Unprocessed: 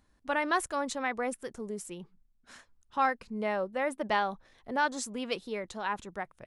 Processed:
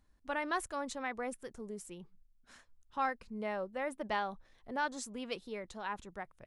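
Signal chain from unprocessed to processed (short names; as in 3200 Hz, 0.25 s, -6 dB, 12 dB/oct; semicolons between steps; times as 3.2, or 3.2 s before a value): low shelf 64 Hz +9.5 dB; gain -6.5 dB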